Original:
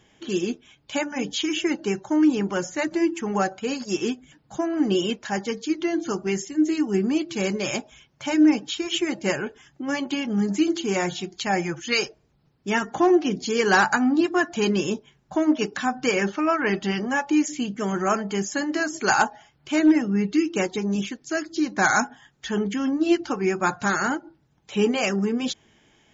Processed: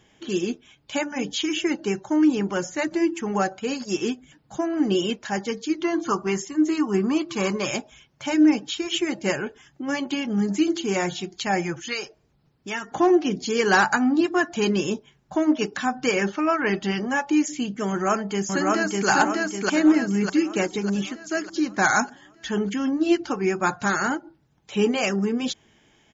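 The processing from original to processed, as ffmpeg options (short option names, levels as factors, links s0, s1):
-filter_complex "[0:a]asettb=1/sr,asplit=3[s0][s1][s2];[s0]atrim=end=5.844[s3];[s1]atrim=start=5.84:end=7.65,asetpts=PTS-STARTPTS,afade=t=in:d=0.004:c=qsin,afade=t=out:st=1.806:d=0.004:c=qsin,equalizer=f=1100:w=2.8:g=13.5[s4];[s2]atrim=start=7.646[s5];[s3][s4]acrossfade=d=0.004:c1=hsin:c2=qsin[s6];[s6][s5]acrossfade=d=0.004:c1=qsin:c2=hsin,asettb=1/sr,asplit=3[s7][s8][s9];[s7]atrim=end=11.764[s10];[s8]atrim=start=11.76:end=12.92,asetpts=PTS-STARTPTS,afade=t=in:d=0.004:c=qsin,afade=t=out:st=1.156:d=0.004:c=qsin,acrossover=split=560|1200[s11][s12][s13];[s11]acompressor=threshold=0.0126:ratio=4[s14];[s12]acompressor=threshold=0.0126:ratio=4[s15];[s13]acompressor=threshold=0.0355:ratio=4[s16];[s14][s15][s16]amix=inputs=3:normalize=0[s17];[s9]atrim=start=12.916[s18];[s10][s17]acrossfade=d=0.004:c1=hsin:c2=qsin[s19];[s19][s18]acrossfade=d=0.004:c1=qsin:c2=hsin,asplit=2[s20][s21];[s21]afade=t=in:st=17.89:d=0.01,afade=t=out:st=19.09:d=0.01,aecho=0:1:600|1200|1800|2400|3000|3600|4200:0.891251|0.445625|0.222813|0.111406|0.0557032|0.0278516|0.0139258[s22];[s20][s22]amix=inputs=2:normalize=0"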